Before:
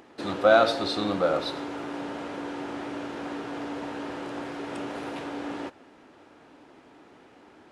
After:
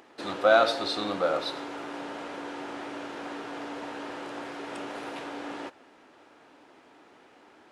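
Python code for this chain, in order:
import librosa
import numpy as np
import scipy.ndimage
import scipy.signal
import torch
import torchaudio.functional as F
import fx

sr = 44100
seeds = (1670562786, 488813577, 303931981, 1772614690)

y = fx.low_shelf(x, sr, hz=280.0, db=-10.5)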